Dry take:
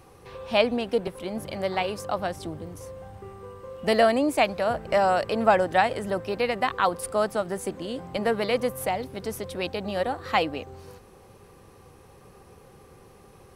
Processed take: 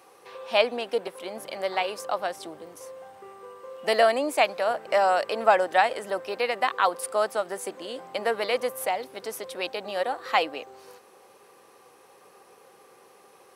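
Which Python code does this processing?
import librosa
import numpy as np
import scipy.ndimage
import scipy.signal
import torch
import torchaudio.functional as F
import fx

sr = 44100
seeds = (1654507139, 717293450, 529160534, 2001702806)

y = scipy.signal.sosfilt(scipy.signal.butter(2, 460.0, 'highpass', fs=sr, output='sos'), x)
y = y * 10.0 ** (1.0 / 20.0)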